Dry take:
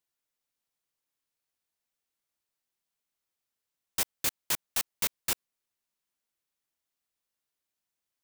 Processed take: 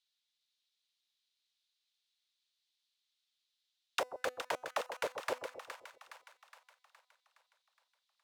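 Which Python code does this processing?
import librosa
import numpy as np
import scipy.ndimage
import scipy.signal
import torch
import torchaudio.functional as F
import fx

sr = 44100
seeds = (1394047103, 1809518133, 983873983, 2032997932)

p1 = fx.peak_eq(x, sr, hz=220.0, db=-7.5, octaves=1.4)
p2 = fx.level_steps(p1, sr, step_db=12)
p3 = p1 + F.gain(torch.from_numpy(p2), -1.0).numpy()
p4 = fx.comb_fb(p3, sr, f0_hz=250.0, decay_s=0.52, harmonics='all', damping=0.0, mix_pct=40)
p5 = fx.auto_wah(p4, sr, base_hz=520.0, top_hz=3800.0, q=3.8, full_db=-29.5, direction='down')
p6 = fx.echo_split(p5, sr, split_hz=870.0, low_ms=129, high_ms=416, feedback_pct=52, wet_db=-8)
y = F.gain(torch.from_numpy(p6), 15.0).numpy()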